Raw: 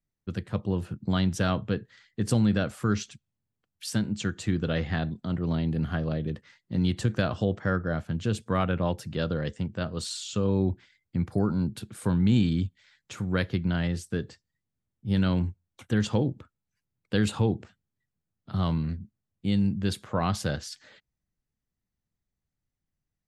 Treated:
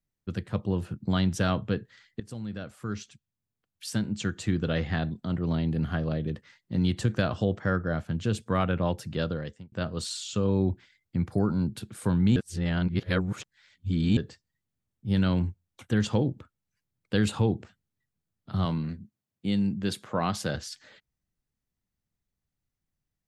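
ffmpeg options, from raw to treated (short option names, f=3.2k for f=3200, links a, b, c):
-filter_complex "[0:a]asettb=1/sr,asplit=3[a][b][c];[a]atrim=end=18.654[d];[b]atrim=start=18.65:end=20.55,asetpts=PTS-STARTPTS,afade=t=in:d=0.004:c=qsin,afade=t=out:st=1.896:d=0.004:c=qsin,highpass=140[e];[c]atrim=start=20.546[f];[d][e]acrossfade=d=0.004:c1=hsin:c2=qsin[g];[g][f]acrossfade=d=0.004:c1=qsin:c2=hsin,asplit=5[h][i][j][k][l];[h]atrim=end=2.2,asetpts=PTS-STARTPTS,afade=t=out:st=2.196:d=0.004:c=hsin:silence=0.112202[m];[i]atrim=start=2.2:end=9.72,asetpts=PTS-STARTPTS,afade=t=in:d=2.16:silence=0.112202,afade=t=out:st=7.01:d=0.51[n];[j]atrim=start=9.72:end=12.362,asetpts=PTS-STARTPTS,afade=t=in:d=0.004:c=hsin[o];[k]atrim=start=12.358:end=14.172,asetpts=PTS-STARTPTS,areverse[p];[l]atrim=start=14.168[q];[m][n][o]concat=n=3:v=0:a=1[r];[r][p]acrossfade=d=0.004:c1=hsin:c2=hsin[s];[s][q]acrossfade=d=0.004:c1=hsin:c2=hsin"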